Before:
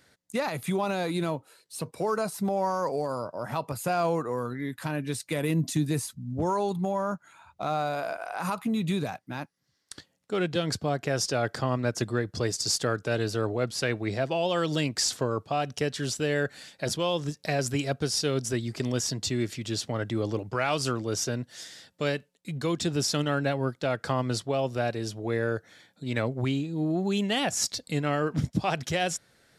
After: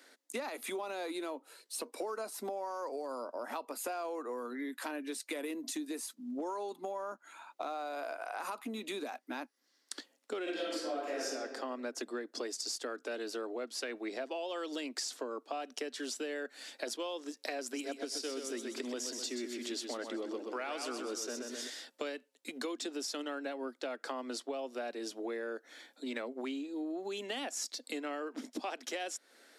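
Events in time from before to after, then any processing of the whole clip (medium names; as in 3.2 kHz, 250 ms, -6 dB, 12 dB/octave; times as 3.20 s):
10.43–11.24 s: reverb throw, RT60 1.1 s, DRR -10.5 dB
17.60–21.70 s: feedback delay 127 ms, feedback 43%, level -6.5 dB
whole clip: steep high-pass 240 Hz 72 dB/octave; compression, threshold -39 dBFS; trim +2 dB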